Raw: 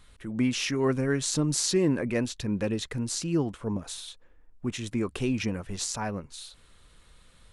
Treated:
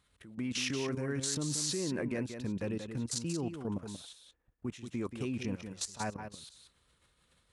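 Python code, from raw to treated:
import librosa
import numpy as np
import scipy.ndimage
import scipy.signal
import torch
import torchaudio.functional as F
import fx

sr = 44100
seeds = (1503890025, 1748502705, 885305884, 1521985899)

y = fx.level_steps(x, sr, step_db=16)
y = scipy.signal.sosfilt(scipy.signal.butter(2, 61.0, 'highpass', fs=sr, output='sos'), y)
y = y + 10.0 ** (-8.0 / 20.0) * np.pad(y, (int(182 * sr / 1000.0), 0))[:len(y)]
y = y * librosa.db_to_amplitude(-2.5)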